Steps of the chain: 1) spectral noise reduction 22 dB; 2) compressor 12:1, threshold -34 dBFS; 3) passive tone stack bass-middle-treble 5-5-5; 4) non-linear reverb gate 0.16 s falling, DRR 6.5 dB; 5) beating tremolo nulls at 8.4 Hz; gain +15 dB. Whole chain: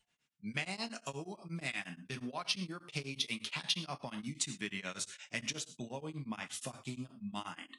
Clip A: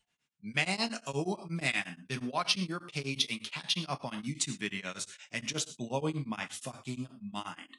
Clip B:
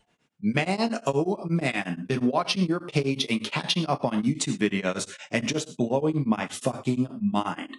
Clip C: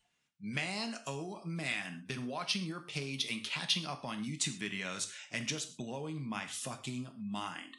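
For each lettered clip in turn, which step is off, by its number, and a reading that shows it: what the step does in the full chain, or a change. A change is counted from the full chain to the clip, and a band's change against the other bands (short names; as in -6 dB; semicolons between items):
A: 2, mean gain reduction 4.5 dB; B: 3, 8 kHz band -9.5 dB; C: 5, loudness change +2.5 LU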